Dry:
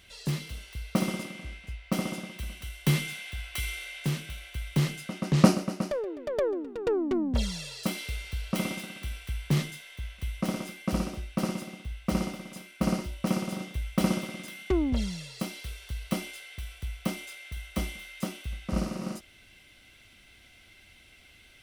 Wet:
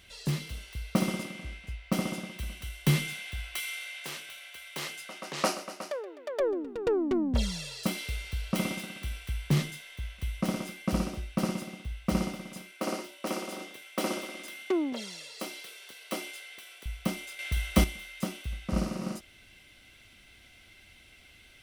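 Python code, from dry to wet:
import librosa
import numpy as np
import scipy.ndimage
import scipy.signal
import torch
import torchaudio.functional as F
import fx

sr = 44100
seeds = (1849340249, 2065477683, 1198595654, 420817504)

y = fx.highpass(x, sr, hz=610.0, slope=12, at=(3.57, 6.4))
y = fx.highpass(y, sr, hz=290.0, slope=24, at=(12.71, 16.86))
y = fx.edit(y, sr, fx.clip_gain(start_s=17.39, length_s=0.45, db=8.5), tone=tone)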